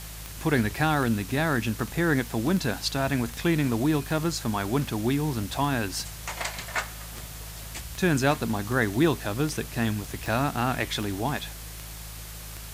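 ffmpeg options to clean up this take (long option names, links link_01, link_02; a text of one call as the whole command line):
ffmpeg -i in.wav -af "adeclick=threshold=4,bandreject=frequency=53.6:width_type=h:width=4,bandreject=frequency=107.2:width_type=h:width=4,bandreject=frequency=160.8:width_type=h:width=4,afwtdn=0.0079" out.wav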